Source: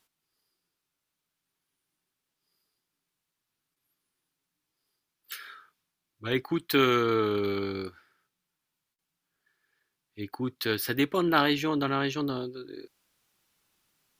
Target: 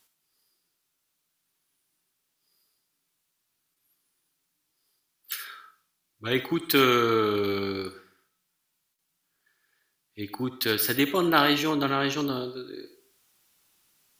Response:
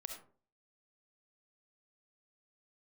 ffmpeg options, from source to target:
-filter_complex "[0:a]asplit=2[link_01][link_02];[link_02]lowshelf=frequency=120:gain=-8.5[link_03];[1:a]atrim=start_sample=2205,highshelf=frequency=3600:gain=11[link_04];[link_03][link_04]afir=irnorm=-1:irlink=0,volume=1.5dB[link_05];[link_01][link_05]amix=inputs=2:normalize=0,volume=-2.5dB"

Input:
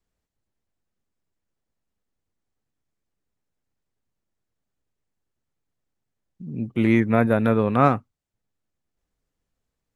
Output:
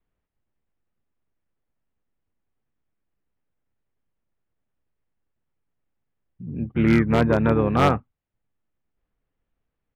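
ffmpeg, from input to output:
ffmpeg -i in.wav -filter_complex "[0:a]lowpass=frequency=3100:width=0.5412,lowpass=frequency=3100:width=1.3066,asplit=2[link_01][link_02];[link_02]asetrate=29433,aresample=44100,atempo=1.49831,volume=-6dB[link_03];[link_01][link_03]amix=inputs=2:normalize=0,aeval=exprs='0.398*(abs(mod(val(0)/0.398+3,4)-2)-1)':channel_layout=same" out.wav

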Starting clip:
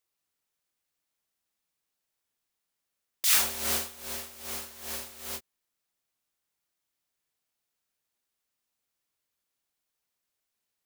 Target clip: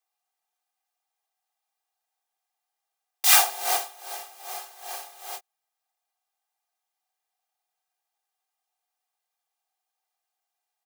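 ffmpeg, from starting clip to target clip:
ffmpeg -i in.wav -af "aeval=exprs='0.316*(cos(1*acos(clip(val(0)/0.316,-1,1)))-cos(1*PI/2))+0.0282*(cos(7*acos(clip(val(0)/0.316,-1,1)))-cos(7*PI/2))':channel_layout=same,highpass=frequency=730:width_type=q:width=4.9,aecho=1:1:2.5:0.98,volume=3.5dB" out.wav

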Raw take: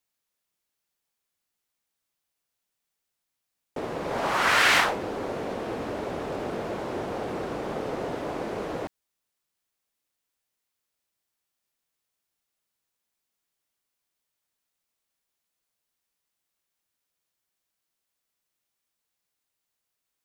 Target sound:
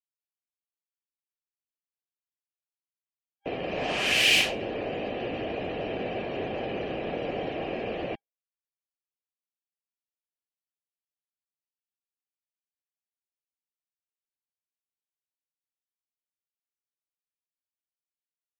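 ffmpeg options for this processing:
ffmpeg -i in.wav -filter_complex "[0:a]afftdn=noise_reduction=28:noise_floor=-49,superequalizer=9b=0.355:10b=0.355:12b=2.82,acrossover=split=330|610|2500[link_01][link_02][link_03][link_04];[link_03]acompressor=threshold=-33dB:ratio=6[link_05];[link_01][link_02][link_05][link_04]amix=inputs=4:normalize=0,asetrate=48000,aresample=44100" out.wav

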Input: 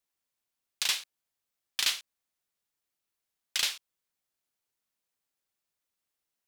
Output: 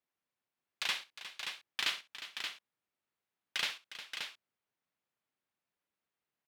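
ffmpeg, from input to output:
ffmpeg -i in.wav -filter_complex "[0:a]highpass=110,bass=frequency=250:gain=3,treble=frequency=4000:gain=-15,asplit=2[link_01][link_02];[link_02]aecho=0:1:65|358|577:0.15|0.224|0.473[link_03];[link_01][link_03]amix=inputs=2:normalize=0" out.wav

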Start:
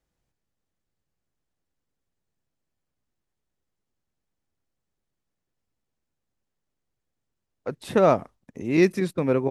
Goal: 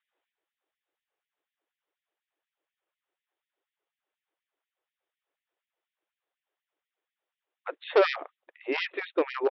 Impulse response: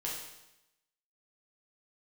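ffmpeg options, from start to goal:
-af "aresample=8000,aresample=44100,aresample=11025,asoftclip=type=hard:threshold=-17.5dB,aresample=44100,afftfilt=real='re*gte(b*sr/1024,280*pow(1800/280,0.5+0.5*sin(2*PI*4.1*pts/sr)))':imag='im*gte(b*sr/1024,280*pow(1800/280,0.5+0.5*sin(2*PI*4.1*pts/sr)))':win_size=1024:overlap=0.75,volume=3.5dB"

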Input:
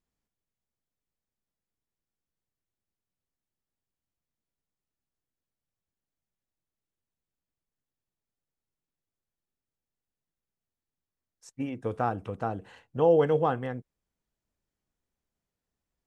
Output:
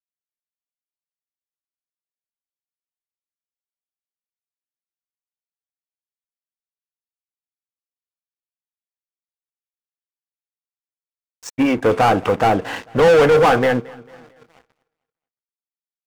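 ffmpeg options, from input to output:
ffmpeg -i in.wav -filter_complex "[0:a]asplit=2[link_01][link_02];[link_02]highpass=frequency=720:poles=1,volume=31dB,asoftclip=type=tanh:threshold=-11dB[link_03];[link_01][link_03]amix=inputs=2:normalize=0,lowpass=frequency=2500:poles=1,volume=-6dB,asplit=2[link_04][link_05];[link_05]adelay=1067,lowpass=frequency=1900:poles=1,volume=-24dB,asplit=2[link_06][link_07];[link_07]adelay=1067,lowpass=frequency=1900:poles=1,volume=0.48,asplit=2[link_08][link_09];[link_09]adelay=1067,lowpass=frequency=1900:poles=1,volume=0.48[link_10];[link_06][link_08][link_10]amix=inputs=3:normalize=0[link_11];[link_04][link_11]amix=inputs=2:normalize=0,aeval=exprs='sgn(val(0))*max(abs(val(0))-0.0106,0)':channel_layout=same,bandreject=frequency=4100:width=28,asplit=2[link_12][link_13];[link_13]aecho=0:1:223|446|669:0.075|0.0315|0.0132[link_14];[link_12][link_14]amix=inputs=2:normalize=0,volume=6dB" out.wav

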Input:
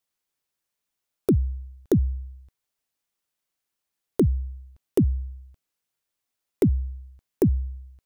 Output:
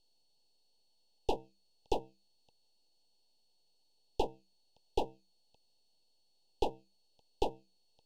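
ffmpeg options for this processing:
ffmpeg -i in.wav -af "asoftclip=type=tanh:threshold=-27dB,highpass=frequency=400:width=0.5412,highpass=frequency=400:width=1.3066,equalizer=frequency=470:width_type=q:width=4:gain=7,equalizer=frequency=840:width_type=q:width=4:gain=7,equalizer=frequency=1700:width_type=q:width=4:gain=10,equalizer=frequency=2500:width_type=q:width=4:gain=6,equalizer=frequency=5800:width_type=q:width=4:gain=4,lowpass=frequency=5800:width=0.5412,lowpass=frequency=5800:width=1.3066,aeval=exprs='val(0)+0.000316*sin(2*PI*2200*n/s)':channel_layout=same,aeval=exprs='max(val(0),0)':channel_layout=same,asuperstop=centerf=1600:order=20:qfactor=0.92,volume=6.5dB" out.wav

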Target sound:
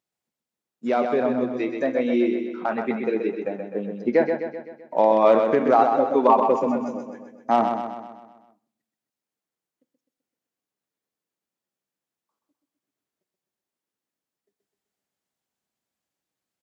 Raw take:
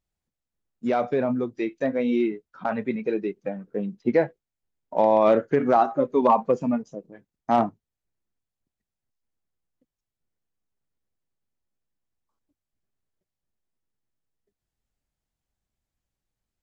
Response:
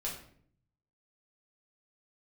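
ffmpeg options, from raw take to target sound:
-filter_complex "[0:a]highpass=230,aecho=1:1:128|256|384|512|640|768|896:0.501|0.266|0.141|0.0746|0.0395|0.021|0.0111,asplit=2[link_01][link_02];[1:a]atrim=start_sample=2205,asetrate=34839,aresample=44100[link_03];[link_02][link_03]afir=irnorm=-1:irlink=0,volume=-19.5dB[link_04];[link_01][link_04]amix=inputs=2:normalize=0,volume=1dB"

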